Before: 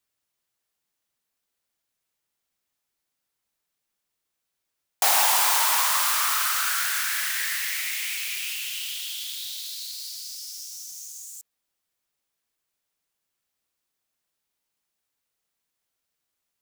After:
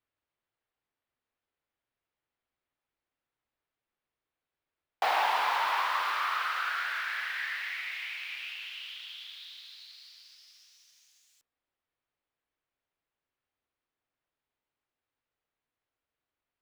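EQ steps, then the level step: air absorption 380 m; bell 190 Hz -11.5 dB 0.23 oct; 0.0 dB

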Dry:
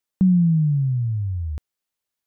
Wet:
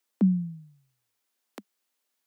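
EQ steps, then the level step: steep high-pass 200 Hz 96 dB/oct; +5.0 dB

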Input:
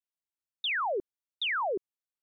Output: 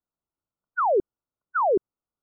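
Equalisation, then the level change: brick-wall FIR low-pass 1500 Hz; low shelf 400 Hz +8 dB; +7.0 dB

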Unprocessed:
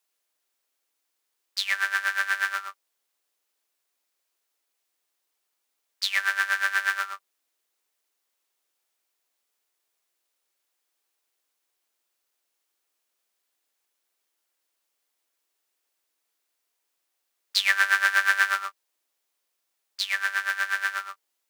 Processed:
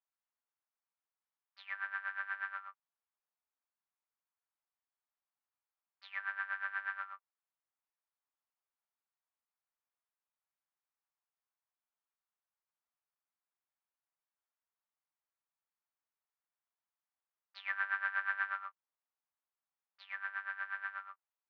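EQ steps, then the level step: ladder band-pass 1200 Hz, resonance 25%; air absorption 280 m; 0.0 dB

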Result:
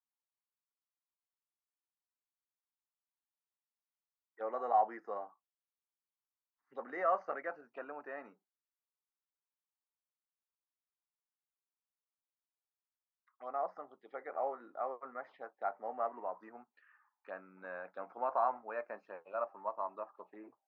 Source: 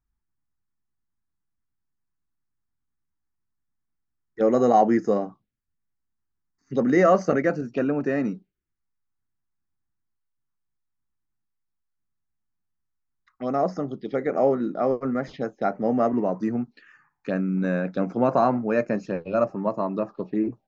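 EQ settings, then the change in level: ladder band-pass 1100 Hz, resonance 40%; air absorption 74 m; 0.0 dB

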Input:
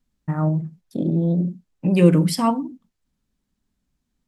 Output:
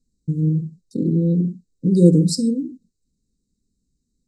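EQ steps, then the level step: brick-wall FIR band-stop 530–3700 Hz; synth low-pass 7900 Hz, resonance Q 3.1; high shelf 5300 Hz -7.5 dB; +2.0 dB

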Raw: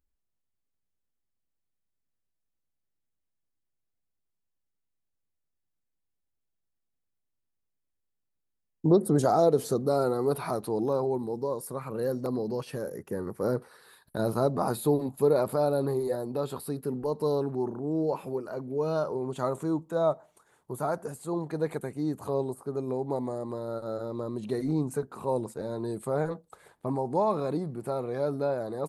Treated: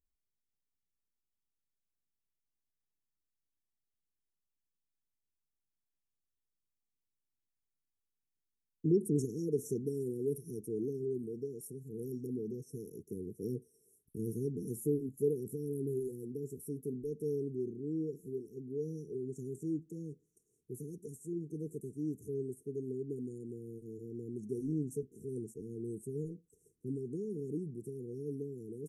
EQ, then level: brick-wall FIR band-stop 470–5400 Hz; -7.0 dB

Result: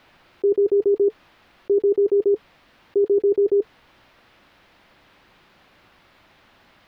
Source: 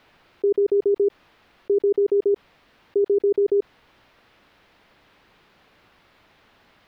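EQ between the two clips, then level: notch 440 Hz, Q 12; +2.5 dB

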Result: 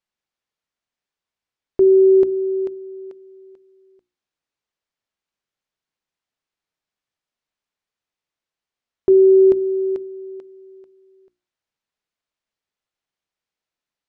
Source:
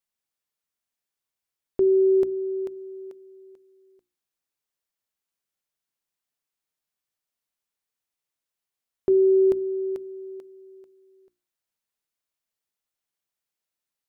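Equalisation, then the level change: dynamic EQ 350 Hz, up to +3 dB, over -33 dBFS; air absorption 98 m; +4.5 dB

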